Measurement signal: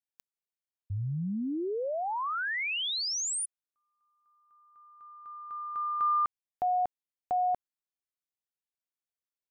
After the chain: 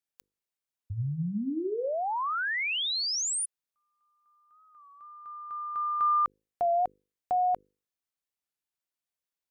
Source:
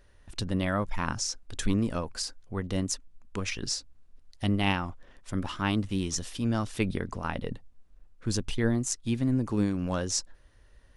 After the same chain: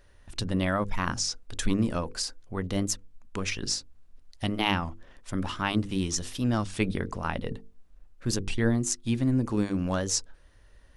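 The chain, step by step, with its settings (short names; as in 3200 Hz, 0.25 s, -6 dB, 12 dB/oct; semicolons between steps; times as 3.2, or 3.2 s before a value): notches 50/100/150/200/250/300/350/400/450/500 Hz; record warp 33 1/3 rpm, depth 100 cents; gain +2 dB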